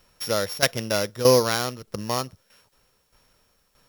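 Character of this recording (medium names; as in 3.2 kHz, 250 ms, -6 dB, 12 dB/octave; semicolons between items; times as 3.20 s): a buzz of ramps at a fixed pitch in blocks of 8 samples; tremolo saw down 1.6 Hz, depth 75%; a quantiser's noise floor 12-bit, dither triangular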